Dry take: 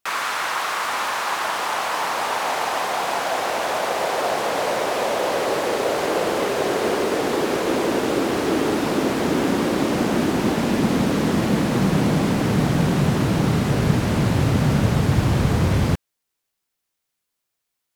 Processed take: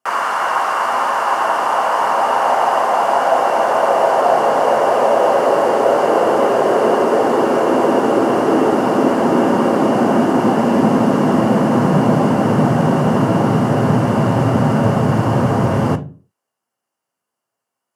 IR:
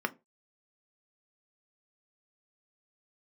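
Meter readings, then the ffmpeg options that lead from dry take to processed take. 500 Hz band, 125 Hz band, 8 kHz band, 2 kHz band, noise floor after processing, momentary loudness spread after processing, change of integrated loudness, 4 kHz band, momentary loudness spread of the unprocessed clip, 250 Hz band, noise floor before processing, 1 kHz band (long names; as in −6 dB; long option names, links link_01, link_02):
+8.5 dB, +2.5 dB, −3.0 dB, +2.5 dB, −81 dBFS, 3 LU, +6.5 dB, −2.5 dB, 4 LU, +5.5 dB, −79 dBFS, +9.5 dB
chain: -filter_complex "[0:a]highpass=190[link_01];[1:a]atrim=start_sample=2205,asetrate=23373,aresample=44100[link_02];[link_01][link_02]afir=irnorm=-1:irlink=0,volume=-3.5dB"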